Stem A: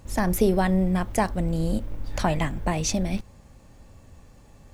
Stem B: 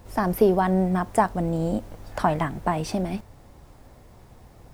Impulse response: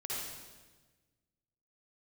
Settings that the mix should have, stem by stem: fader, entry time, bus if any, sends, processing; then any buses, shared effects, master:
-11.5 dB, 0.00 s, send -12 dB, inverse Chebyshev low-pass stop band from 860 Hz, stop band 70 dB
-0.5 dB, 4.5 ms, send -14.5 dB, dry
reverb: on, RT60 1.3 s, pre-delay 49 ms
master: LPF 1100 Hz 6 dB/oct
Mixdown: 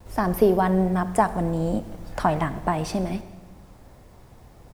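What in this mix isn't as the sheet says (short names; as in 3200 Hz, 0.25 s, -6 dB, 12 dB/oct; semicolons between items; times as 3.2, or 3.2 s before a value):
stem A -11.5 dB -> -20.0 dB; master: missing LPF 1100 Hz 6 dB/oct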